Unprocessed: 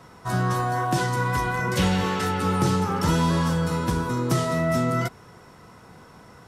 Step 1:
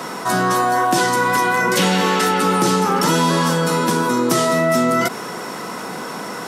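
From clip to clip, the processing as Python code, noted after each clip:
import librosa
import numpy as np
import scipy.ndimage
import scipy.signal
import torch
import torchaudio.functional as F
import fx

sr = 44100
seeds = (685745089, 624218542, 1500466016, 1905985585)

y = scipy.signal.sosfilt(scipy.signal.butter(4, 200.0, 'highpass', fs=sr, output='sos'), x)
y = fx.high_shelf(y, sr, hz=5100.0, db=4.5)
y = fx.env_flatten(y, sr, amount_pct=50)
y = y * librosa.db_to_amplitude(7.0)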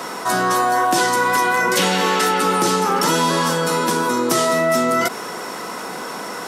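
y = fx.bass_treble(x, sr, bass_db=-7, treble_db=1)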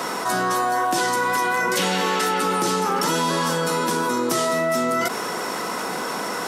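y = fx.env_flatten(x, sr, amount_pct=50)
y = y * librosa.db_to_amplitude(-5.0)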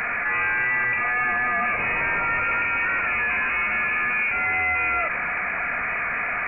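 y = np.clip(x, -10.0 ** (-23.0 / 20.0), 10.0 ** (-23.0 / 20.0))
y = fx.freq_invert(y, sr, carrier_hz=2700)
y = y * librosa.db_to_amplitude(2.5)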